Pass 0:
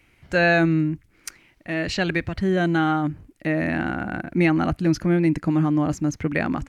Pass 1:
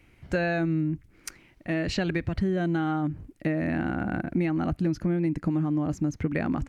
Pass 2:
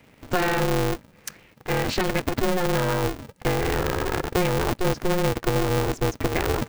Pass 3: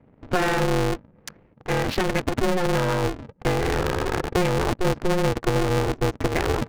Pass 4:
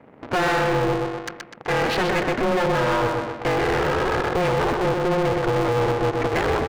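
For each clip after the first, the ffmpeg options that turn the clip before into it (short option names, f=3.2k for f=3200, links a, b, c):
-af "tiltshelf=f=690:g=3.5,acompressor=threshold=-23dB:ratio=6"
-af "aeval=exprs='val(0)*sgn(sin(2*PI*180*n/s))':c=same,volume=3.5dB"
-af "adynamicsmooth=sensitivity=5:basefreq=670,volume=1dB"
-filter_complex "[0:a]asplit=2[a][b];[b]adelay=125,lowpass=f=4.7k:p=1,volume=-7dB,asplit=2[c][d];[d]adelay=125,lowpass=f=4.7k:p=1,volume=0.43,asplit=2[e][f];[f]adelay=125,lowpass=f=4.7k:p=1,volume=0.43,asplit=2[g][h];[h]adelay=125,lowpass=f=4.7k:p=1,volume=0.43,asplit=2[i][j];[j]adelay=125,lowpass=f=4.7k:p=1,volume=0.43[k];[a][c][e][g][i][k]amix=inputs=6:normalize=0,asplit=2[l][m];[m]highpass=f=720:p=1,volume=26dB,asoftclip=type=tanh:threshold=-8dB[n];[l][n]amix=inputs=2:normalize=0,lowpass=f=3k:p=1,volume=-6dB,volume=-5.5dB"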